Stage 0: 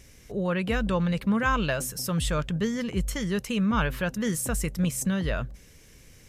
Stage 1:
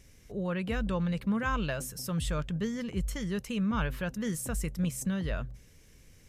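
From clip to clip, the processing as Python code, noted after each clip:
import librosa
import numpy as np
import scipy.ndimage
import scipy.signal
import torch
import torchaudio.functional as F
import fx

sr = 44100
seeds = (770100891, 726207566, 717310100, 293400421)

y = fx.low_shelf(x, sr, hz=200.0, db=4.5)
y = fx.hum_notches(y, sr, base_hz=60, count=2)
y = y * librosa.db_to_amplitude(-7.0)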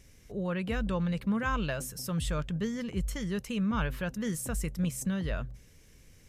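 y = x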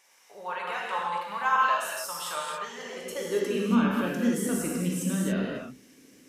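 y = fx.rev_gated(x, sr, seeds[0], gate_ms=310, shape='flat', drr_db=-3.5)
y = fx.filter_sweep_highpass(y, sr, from_hz=890.0, to_hz=270.0, start_s=2.72, end_s=3.77, q=4.0)
y = y * librosa.db_to_amplitude(-1.0)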